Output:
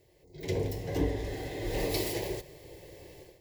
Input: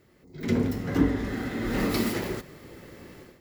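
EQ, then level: fixed phaser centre 550 Hz, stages 4; 0.0 dB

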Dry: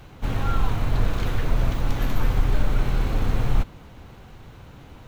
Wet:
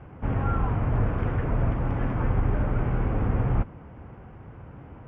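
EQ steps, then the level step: running mean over 11 samples; HPF 51 Hz; air absorption 290 m; +2.0 dB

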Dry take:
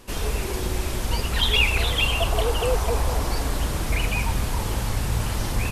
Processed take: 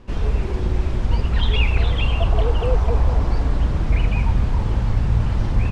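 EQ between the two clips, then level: air absorption 110 m; tone controls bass +7 dB, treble +1 dB; high shelf 2900 Hz -9 dB; 0.0 dB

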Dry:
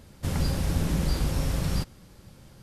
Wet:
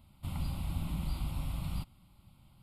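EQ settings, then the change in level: fixed phaser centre 1700 Hz, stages 6; -8.5 dB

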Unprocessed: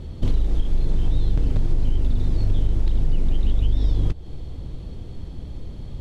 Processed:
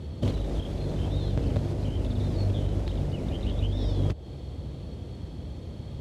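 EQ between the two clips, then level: HPF 62 Hz 24 dB/oct; dynamic EQ 590 Hz, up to +7 dB, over -54 dBFS, Q 2.4; 0.0 dB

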